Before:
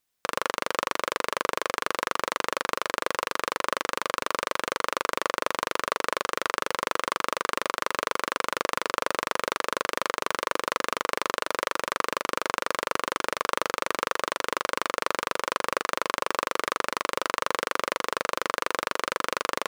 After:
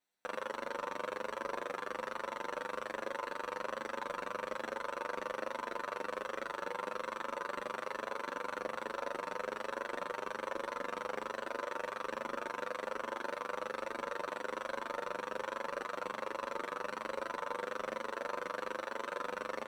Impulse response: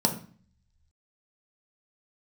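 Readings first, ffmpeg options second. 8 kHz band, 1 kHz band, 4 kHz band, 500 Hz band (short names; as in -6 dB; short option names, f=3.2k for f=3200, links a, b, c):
-19.5 dB, -11.5 dB, -17.5 dB, -8.0 dB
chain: -filter_complex "[0:a]alimiter=limit=-9dB:level=0:latency=1,volume=18.5dB,asoftclip=hard,volume=-18.5dB,asplit=2[a][b];[b]highpass=f=720:p=1,volume=8dB,asoftclip=type=tanh:threshold=-18dB[c];[a][c]amix=inputs=2:normalize=0,lowpass=f=1.6k:p=1,volume=-6dB,asplit=2[d][e];[1:a]atrim=start_sample=2205,highshelf=f=3k:g=11[f];[e][f]afir=irnorm=-1:irlink=0,volume=-16.5dB[g];[d][g]amix=inputs=2:normalize=0,asplit=2[h][i];[i]adelay=8.3,afreqshift=1.2[j];[h][j]amix=inputs=2:normalize=1,volume=-4dB"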